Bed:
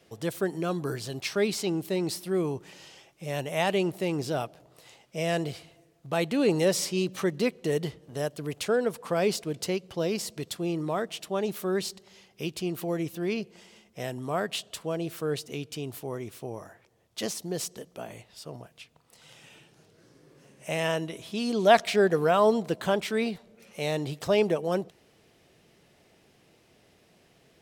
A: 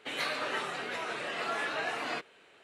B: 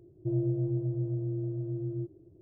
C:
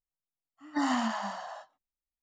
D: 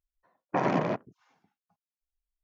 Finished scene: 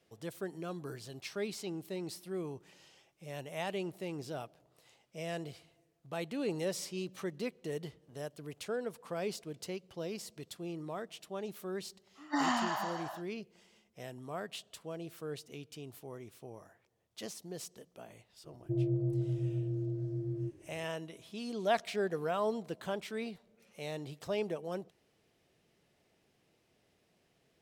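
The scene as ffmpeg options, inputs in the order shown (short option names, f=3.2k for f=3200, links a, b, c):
-filter_complex "[0:a]volume=-11.5dB[a];[3:a]equalizer=f=120:w=0.99:g=-14,atrim=end=2.22,asetpts=PTS-STARTPTS,volume=-0.5dB,afade=t=in:d=0.004:c=hsin,afade=t=out:st=2.216:d=0.004:c=hsin,adelay=11570[b];[2:a]atrim=end=2.41,asetpts=PTS-STARTPTS,volume=-2.5dB,afade=t=in:d=0.004:c=hsin,afade=t=out:st=2.406:d=0.004:c=hsin,adelay=813204S[c];[a][b][c]amix=inputs=3:normalize=0"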